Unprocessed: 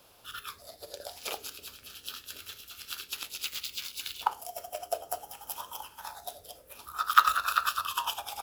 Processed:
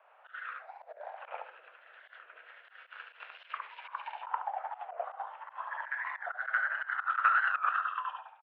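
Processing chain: ending faded out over 0.67 s; 1.06–2.7 air absorption 220 m; on a send: feedback echo 72 ms, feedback 22%, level -3.5 dB; on the sum: echoes that change speed 82 ms, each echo +2 st, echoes 2, each echo -6 dB; in parallel at -6.5 dB: soft clip -18.5 dBFS, distortion -8 dB; on the sum: auto swell 0.1 s; one-sided clip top -20 dBFS; mistuned SSB +69 Hz 530–2200 Hz; record warp 45 rpm, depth 160 cents; gain -2.5 dB

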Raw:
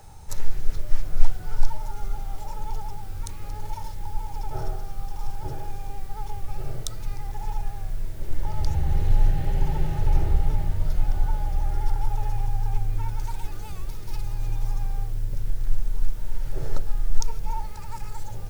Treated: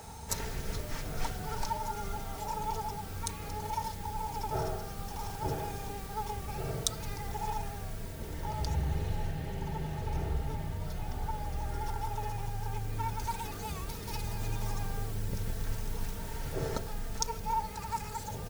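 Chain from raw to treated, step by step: HPF 74 Hz 12 dB/oct; comb 4.4 ms, depth 48%; vocal rider 2 s

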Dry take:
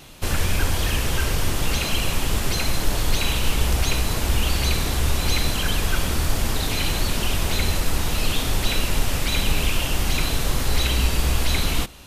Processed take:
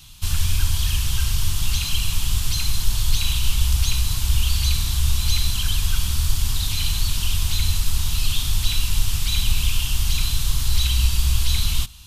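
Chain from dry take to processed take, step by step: EQ curve 100 Hz 0 dB, 520 Hz -28 dB, 1000 Hz -10 dB, 2000 Hz -13 dB, 3200 Hz -1 dB; gain +2.5 dB

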